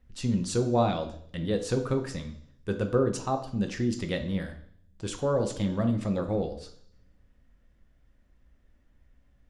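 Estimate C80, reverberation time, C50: 14.0 dB, 0.60 s, 10.5 dB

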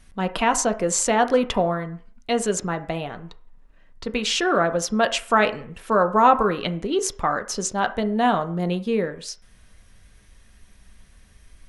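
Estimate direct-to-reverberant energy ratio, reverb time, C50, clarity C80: 7.0 dB, 0.45 s, 15.0 dB, 19.0 dB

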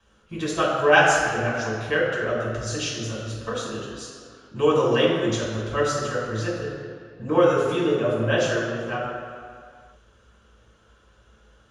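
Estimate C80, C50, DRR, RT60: 2.0 dB, 0.5 dB, -6.0 dB, no single decay rate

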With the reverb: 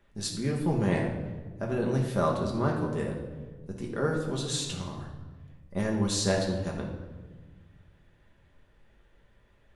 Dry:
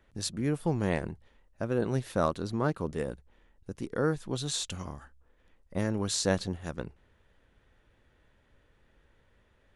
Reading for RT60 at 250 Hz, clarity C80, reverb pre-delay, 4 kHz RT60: 2.1 s, 7.5 dB, 5 ms, 0.90 s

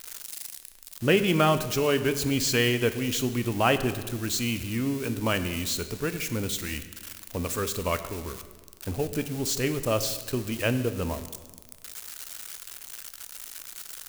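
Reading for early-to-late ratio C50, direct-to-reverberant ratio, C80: 12.0 dB, 10.0 dB, 13.0 dB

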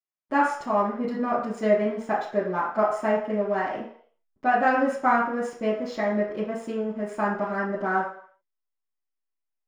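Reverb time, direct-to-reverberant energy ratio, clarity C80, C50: 0.55 s, -11.5 dB, 8.0 dB, 5.0 dB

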